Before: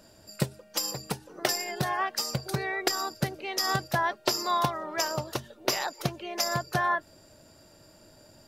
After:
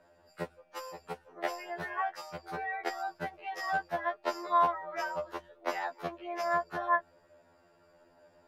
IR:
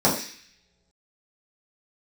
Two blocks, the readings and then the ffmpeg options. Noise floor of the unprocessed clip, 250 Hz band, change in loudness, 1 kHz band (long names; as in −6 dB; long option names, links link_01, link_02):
−56 dBFS, −9.5 dB, −5.0 dB, −1.5 dB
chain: -filter_complex "[0:a]acrossover=split=420 2400:gain=0.251 1 0.1[link_01][link_02][link_03];[link_01][link_02][link_03]amix=inputs=3:normalize=0,afftfilt=real='re*2*eq(mod(b,4),0)':imag='im*2*eq(mod(b,4),0)':win_size=2048:overlap=0.75"